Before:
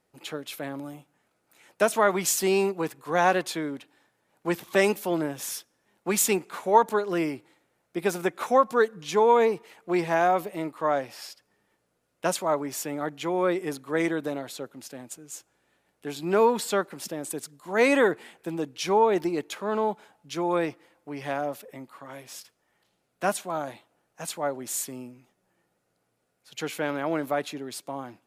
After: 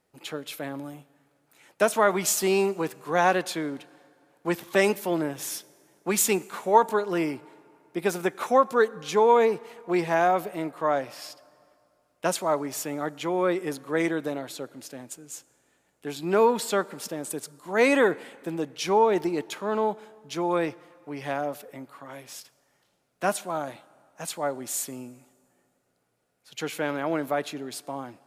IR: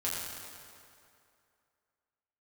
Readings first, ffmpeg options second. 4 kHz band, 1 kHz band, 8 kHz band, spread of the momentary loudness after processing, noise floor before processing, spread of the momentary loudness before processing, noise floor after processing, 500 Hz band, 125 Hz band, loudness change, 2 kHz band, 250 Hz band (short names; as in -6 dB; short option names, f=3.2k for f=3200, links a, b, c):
+0.5 dB, +0.5 dB, +0.5 dB, 19 LU, -75 dBFS, 19 LU, -71 dBFS, +0.5 dB, +0.5 dB, +0.5 dB, +0.5 dB, +0.5 dB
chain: -filter_complex "[0:a]asplit=2[a][b];[1:a]atrim=start_sample=2205[c];[b][c]afir=irnorm=-1:irlink=0,volume=-25.5dB[d];[a][d]amix=inputs=2:normalize=0"